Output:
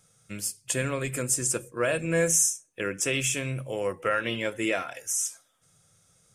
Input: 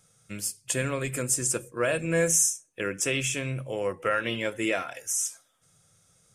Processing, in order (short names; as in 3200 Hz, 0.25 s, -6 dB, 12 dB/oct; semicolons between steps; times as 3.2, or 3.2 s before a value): 3.13–4.01 high shelf 8900 Hz +7.5 dB